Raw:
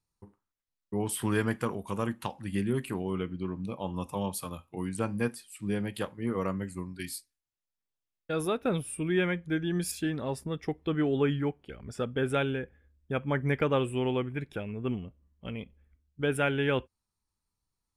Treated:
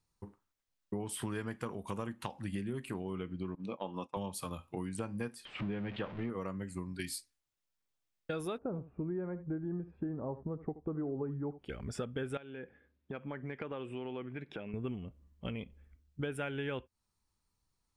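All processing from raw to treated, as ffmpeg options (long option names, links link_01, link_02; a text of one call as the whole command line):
ffmpeg -i in.wav -filter_complex "[0:a]asettb=1/sr,asplit=3[link_01][link_02][link_03];[link_01]atrim=end=3.554[link_04];[link_02]atrim=start=3.55:end=4.17,asetpts=PTS-STARTPTS,afade=type=in:duration=0.004:curve=qsin,afade=type=out:start_time=0.616:duration=0.004:curve=qsin,agate=range=-33dB:threshold=-36dB:ratio=3:release=100:detection=peak,highpass=240,lowpass=4900[link_05];[link_03]atrim=start=4.166[link_06];[link_04][link_05]acrossfade=duration=0.004:curve1=hsin:curve2=qsin[link_07];[link_07][link_06]acrossfade=duration=0.004:curve1=qsin:curve2=hsin,asettb=1/sr,asplit=3[link_08][link_09][link_10];[link_08]atrim=end=5.454[link_11];[link_09]atrim=start=5.45:end=6.3,asetpts=PTS-STARTPTS,afade=type=in:duration=0.004:curve=qsin,afade=type=out:start_time=0.846:duration=0.004:curve=qsin,aeval=exprs='val(0)+0.5*0.0133*sgn(val(0))':channel_layout=same,lowpass=frequency=3200:width=0.5412,lowpass=frequency=3200:width=1.3066[link_12];[link_10]atrim=start=6.296[link_13];[link_11][link_12]acrossfade=duration=0.004:curve1=hsin:curve2=qsin[link_14];[link_14][link_13]acrossfade=duration=0.004:curve1=qsin:curve2=hsin,asettb=1/sr,asplit=3[link_15][link_16][link_17];[link_15]atrim=end=8.584[link_18];[link_16]atrim=start=8.58:end=11.59,asetpts=PTS-STARTPTS,afade=type=in:duration=0.004:curve=qsin,afade=type=out:start_time=3.006:duration=0.004:curve=qsin,lowpass=frequency=1100:width=0.5412,lowpass=frequency=1100:width=1.3066,aecho=1:1:76:0.141,atrim=end_sample=132741[link_19];[link_17]atrim=start=11.586[link_20];[link_18][link_19]acrossfade=duration=0.004:curve1=hsin:curve2=qsin[link_21];[link_21][link_20]acrossfade=duration=0.004:curve1=qsin:curve2=hsin,asettb=1/sr,asplit=3[link_22][link_23][link_24];[link_22]atrim=end=12.374[link_25];[link_23]atrim=start=12.37:end=14.74,asetpts=PTS-STARTPTS,afade=type=in:duration=0.004:curve=qsin,afade=type=out:start_time=2.366:duration=0.004:curve=qsin,highpass=170,lowpass=3800,acompressor=threshold=-44dB:ratio=3:attack=3.2:release=140:knee=1:detection=peak[link_26];[link_24]atrim=start=14.736[link_27];[link_25][link_26]acrossfade=duration=0.004:curve1=hsin:curve2=qsin[link_28];[link_28][link_27]acrossfade=duration=0.004:curve1=qsin:curve2=hsin,equalizer=frequency=12000:width=1.9:gain=-6,acompressor=threshold=-39dB:ratio=6,volume=3.5dB" out.wav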